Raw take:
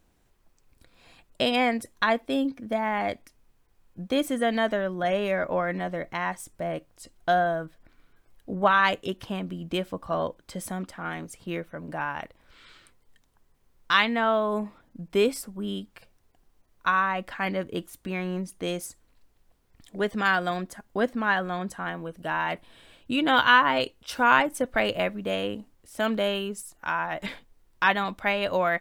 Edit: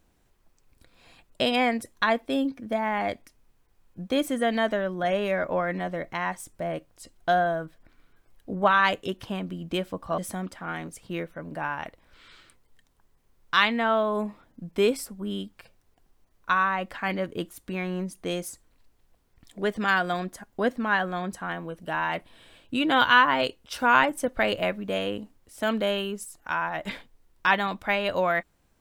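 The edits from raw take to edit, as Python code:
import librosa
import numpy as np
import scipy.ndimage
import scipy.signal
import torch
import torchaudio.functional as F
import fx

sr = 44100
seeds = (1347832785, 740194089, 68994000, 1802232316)

y = fx.edit(x, sr, fx.cut(start_s=10.18, length_s=0.37), tone=tone)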